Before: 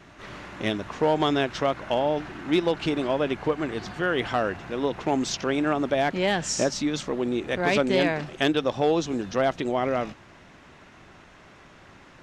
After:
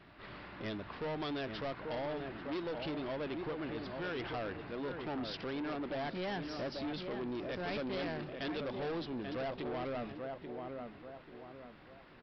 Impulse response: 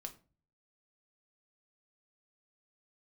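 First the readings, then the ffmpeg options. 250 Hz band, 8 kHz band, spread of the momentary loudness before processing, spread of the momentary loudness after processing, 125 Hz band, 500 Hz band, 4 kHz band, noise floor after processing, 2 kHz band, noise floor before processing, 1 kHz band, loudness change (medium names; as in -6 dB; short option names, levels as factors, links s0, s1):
-13.0 dB, under -30 dB, 6 LU, 11 LU, -12.0 dB, -14.0 dB, -13.5 dB, -56 dBFS, -14.0 dB, -51 dBFS, -14.5 dB, -14.0 dB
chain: -filter_complex "[0:a]asplit=2[s0][s1];[s1]adelay=837,lowpass=f=1500:p=1,volume=0.376,asplit=2[s2][s3];[s3]adelay=837,lowpass=f=1500:p=1,volume=0.37,asplit=2[s4][s5];[s5]adelay=837,lowpass=f=1500:p=1,volume=0.37,asplit=2[s6][s7];[s7]adelay=837,lowpass=f=1500:p=1,volume=0.37[s8];[s0][s2][s4][s6][s8]amix=inputs=5:normalize=0,aresample=11025,asoftclip=type=tanh:threshold=0.0473,aresample=44100,volume=0.376"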